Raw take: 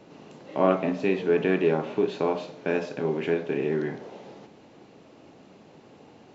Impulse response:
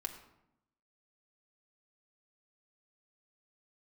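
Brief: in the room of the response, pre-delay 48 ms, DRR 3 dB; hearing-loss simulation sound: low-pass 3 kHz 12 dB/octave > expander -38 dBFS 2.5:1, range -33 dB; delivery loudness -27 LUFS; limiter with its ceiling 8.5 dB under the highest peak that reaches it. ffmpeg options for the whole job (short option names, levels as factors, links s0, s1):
-filter_complex "[0:a]alimiter=limit=0.168:level=0:latency=1,asplit=2[s0][s1];[1:a]atrim=start_sample=2205,adelay=48[s2];[s1][s2]afir=irnorm=-1:irlink=0,volume=0.794[s3];[s0][s3]amix=inputs=2:normalize=0,lowpass=3000,agate=range=0.0224:threshold=0.0126:ratio=2.5,volume=0.891"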